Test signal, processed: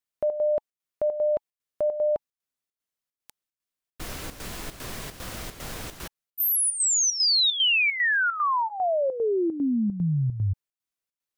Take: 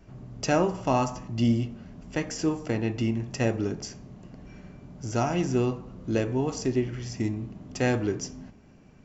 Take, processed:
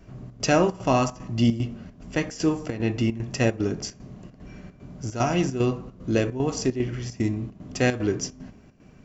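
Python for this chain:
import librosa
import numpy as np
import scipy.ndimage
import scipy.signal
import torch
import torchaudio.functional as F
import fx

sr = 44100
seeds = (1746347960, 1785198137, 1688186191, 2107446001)

y = fx.notch(x, sr, hz=860.0, q=12.0)
y = fx.dynamic_eq(y, sr, hz=3700.0, q=0.78, threshold_db=-39.0, ratio=4.0, max_db=3)
y = fx.chopper(y, sr, hz=2.5, depth_pct=65, duty_pct=75)
y = F.gain(torch.from_numpy(y), 3.5).numpy()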